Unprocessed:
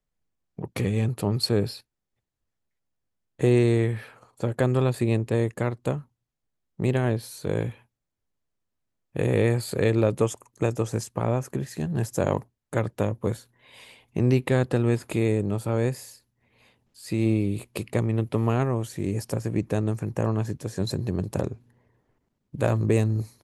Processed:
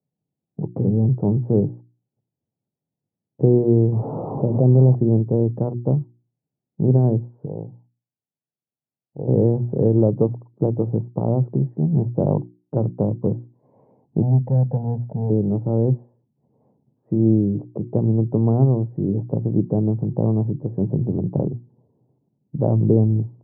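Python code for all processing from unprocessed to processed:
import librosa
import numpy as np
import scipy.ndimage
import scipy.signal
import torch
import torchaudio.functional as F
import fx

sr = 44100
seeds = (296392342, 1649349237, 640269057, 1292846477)

y = fx.chain(x, sr, fx.delta_mod(bps=16000, step_db=-30.5),
    fx.savgol(points=65),
    fx.env_flatten(amount_pct=50), at=(3.92, 4.95))
y = fx.chain(y, sr, fx.ladder_lowpass(hz=980.0, resonance_pct=50),
    fx.upward_expand(threshold_db=-41.0, expansion=1.5), at=(7.45, 9.28))
y = fx.chain(y, sr, fx.overload_stage(gain_db=18.0),
    fx.fixed_phaser(hz=1700.0, stages=8), at=(14.22, 15.3))
y = scipy.signal.sosfilt(scipy.signal.ellip(3, 1.0, 60, [130.0, 860.0], 'bandpass', fs=sr, output='sos'), y)
y = fx.tilt_eq(y, sr, slope=-4.5)
y = fx.hum_notches(y, sr, base_hz=60, count=6)
y = y * librosa.db_to_amplitude(-1.0)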